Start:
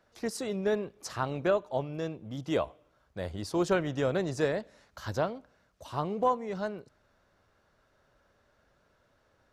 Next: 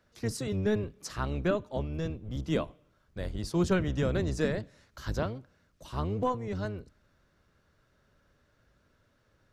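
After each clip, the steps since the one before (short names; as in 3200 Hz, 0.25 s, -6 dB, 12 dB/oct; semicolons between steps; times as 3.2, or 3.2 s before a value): octaver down 1 oct, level +2 dB; bell 770 Hz -6.5 dB 0.99 oct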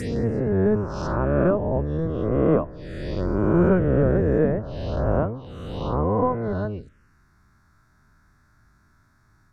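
spectral swells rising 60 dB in 1.96 s; envelope phaser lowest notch 500 Hz, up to 4400 Hz, full sweep at -24.5 dBFS; treble ducked by the level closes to 1100 Hz, closed at -26 dBFS; gain +6.5 dB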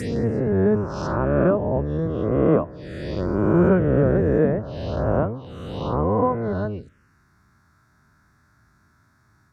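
HPF 71 Hz; gain +1.5 dB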